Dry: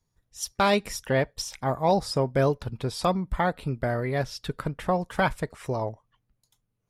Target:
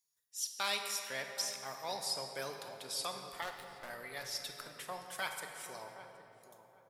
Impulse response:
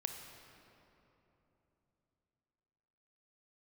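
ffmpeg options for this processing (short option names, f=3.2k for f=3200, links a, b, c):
-filter_complex "[0:a]aderivative,acrossover=split=100|970|5400[a][b][c][d];[d]alimiter=level_in=10dB:limit=-24dB:level=0:latency=1:release=320,volume=-10dB[e];[a][b][c][e]amix=inputs=4:normalize=0,asettb=1/sr,asplit=3[f][g][h];[f]atrim=end=3.424[i];[g]atrim=start=3.42:end=3.9,asetpts=PTS-STARTPTS,afade=t=in:d=0.004:c=qsin,afade=t=out:st=0.476:d=0.004:c=qsin,aeval=exprs='0.0316*(cos(1*acos(clip(val(0)/0.0316,-1,1)))-cos(1*PI/2))+0.01*(cos(2*acos(clip(val(0)/0.0316,-1,1)))-cos(2*PI/2))+0.00355*(cos(7*acos(clip(val(0)/0.0316,-1,1)))-cos(7*PI/2))+0.00251*(cos(8*acos(clip(val(0)/0.0316,-1,1)))-cos(8*PI/2))':c=same[j];[h]atrim=start=3.896[k];[i][j]acrossfade=d=0.004:c1=hsin:c2=qsin[l];[l][k]acrossfade=d=0.004:c1=qsin:c2=hsin,asplit=2[m][n];[n]adelay=771,lowpass=f=920:p=1,volume=-11dB,asplit=2[o][p];[p]adelay=771,lowpass=f=920:p=1,volume=0.32,asplit=2[q][r];[r]adelay=771,lowpass=f=920:p=1,volume=0.32[s];[m][o][q][s]amix=inputs=4:normalize=0[t];[1:a]atrim=start_sample=2205[u];[t][u]afir=irnorm=-1:irlink=0,volume=3dB"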